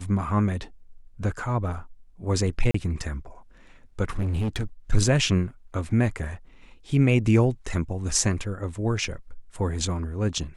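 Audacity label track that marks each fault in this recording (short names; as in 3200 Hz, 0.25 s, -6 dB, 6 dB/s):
2.710000	2.740000	gap 34 ms
4.170000	4.630000	clipped -22.5 dBFS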